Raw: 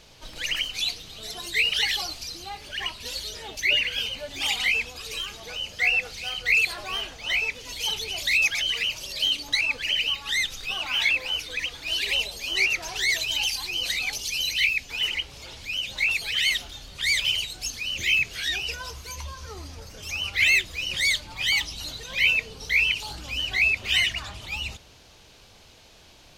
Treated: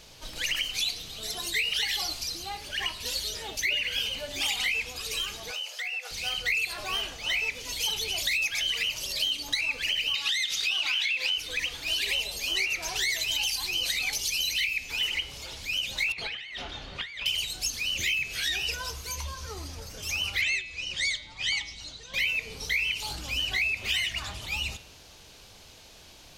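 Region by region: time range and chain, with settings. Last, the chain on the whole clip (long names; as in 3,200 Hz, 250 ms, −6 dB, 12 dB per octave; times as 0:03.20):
0:05.51–0:06.11: high-pass filter 560 Hz 24 dB per octave + downward compressor 12 to 1, threshold −31 dBFS
0:10.14–0:11.38: meter weighting curve D + downward compressor, threshold −19 dBFS
0:16.12–0:17.26: low-pass filter 2,400 Hz + low-shelf EQ 120 Hz −9 dB + compressor whose output falls as the input rises −38 dBFS
0:20.41–0:22.14: low-pass filter 7,600 Hz 24 dB per octave + expander for the loud parts, over −35 dBFS
whole clip: high-shelf EQ 5,900 Hz +6 dB; hum removal 117.5 Hz, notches 36; downward compressor, threshold −25 dBFS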